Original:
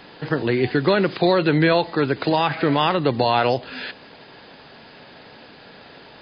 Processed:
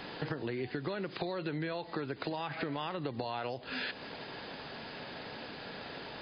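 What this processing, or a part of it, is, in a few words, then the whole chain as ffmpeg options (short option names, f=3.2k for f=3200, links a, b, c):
serial compression, peaks first: -af "acompressor=threshold=-27dB:ratio=6,acompressor=threshold=-36dB:ratio=2.5"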